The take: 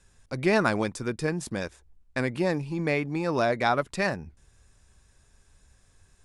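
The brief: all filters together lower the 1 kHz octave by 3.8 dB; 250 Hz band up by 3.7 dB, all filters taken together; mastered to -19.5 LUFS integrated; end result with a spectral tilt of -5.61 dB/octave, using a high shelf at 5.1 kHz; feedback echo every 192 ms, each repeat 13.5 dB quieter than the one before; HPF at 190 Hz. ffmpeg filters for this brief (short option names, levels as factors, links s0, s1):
-af "highpass=190,equalizer=f=250:t=o:g=7.5,equalizer=f=1000:t=o:g=-6,highshelf=f=5100:g=-8,aecho=1:1:192|384:0.211|0.0444,volume=2.37"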